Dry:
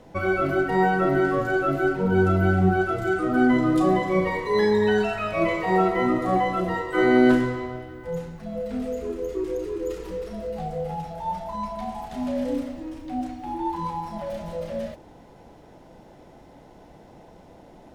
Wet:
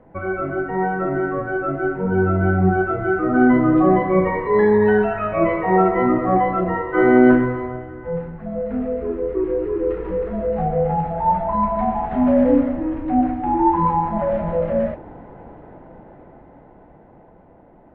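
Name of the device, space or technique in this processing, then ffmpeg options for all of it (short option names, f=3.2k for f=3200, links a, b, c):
action camera in a waterproof case: -af "lowpass=f=1.9k:w=0.5412,lowpass=f=1.9k:w=1.3066,dynaudnorm=f=500:g=11:m=14.5dB,volume=-1dB" -ar 22050 -c:a aac -b:a 48k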